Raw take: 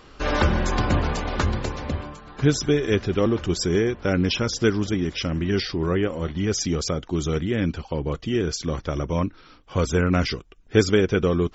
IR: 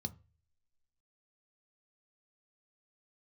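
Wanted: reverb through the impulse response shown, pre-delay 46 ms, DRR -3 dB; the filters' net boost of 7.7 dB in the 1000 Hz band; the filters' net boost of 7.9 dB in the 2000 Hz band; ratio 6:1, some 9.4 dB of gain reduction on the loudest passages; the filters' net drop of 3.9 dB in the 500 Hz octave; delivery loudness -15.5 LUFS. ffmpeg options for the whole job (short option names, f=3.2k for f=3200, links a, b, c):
-filter_complex "[0:a]equalizer=f=500:t=o:g=-7,equalizer=f=1k:t=o:g=9,equalizer=f=2k:t=o:g=7.5,acompressor=threshold=-23dB:ratio=6,asplit=2[a][b];[1:a]atrim=start_sample=2205,adelay=46[c];[b][c]afir=irnorm=-1:irlink=0,volume=5dB[d];[a][d]amix=inputs=2:normalize=0,volume=1.5dB"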